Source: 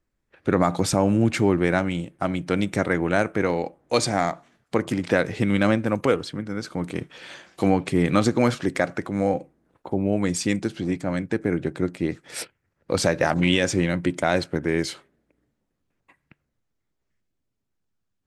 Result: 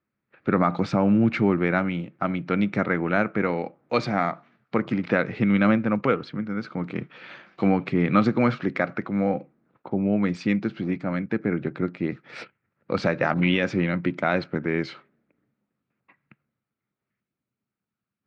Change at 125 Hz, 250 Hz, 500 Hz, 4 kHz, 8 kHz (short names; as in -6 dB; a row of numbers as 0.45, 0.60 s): -1.0 dB, +0.5 dB, -2.5 dB, -7.0 dB, under -20 dB